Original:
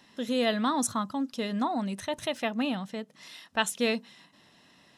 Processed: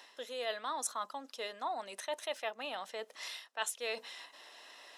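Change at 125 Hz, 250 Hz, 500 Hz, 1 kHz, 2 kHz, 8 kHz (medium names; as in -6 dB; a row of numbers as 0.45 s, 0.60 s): under -30 dB, -26.0 dB, -8.5 dB, -7.0 dB, -7.5 dB, -5.5 dB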